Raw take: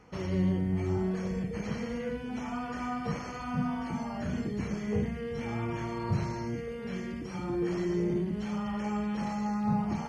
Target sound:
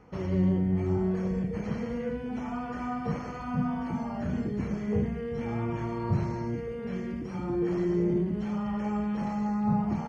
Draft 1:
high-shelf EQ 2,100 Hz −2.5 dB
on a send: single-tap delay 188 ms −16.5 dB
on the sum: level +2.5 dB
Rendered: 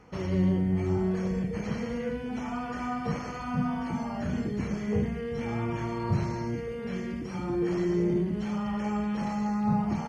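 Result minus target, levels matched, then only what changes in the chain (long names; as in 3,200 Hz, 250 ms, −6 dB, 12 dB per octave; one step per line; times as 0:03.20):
4,000 Hz band +5.5 dB
change: high-shelf EQ 2,100 Hz −10.5 dB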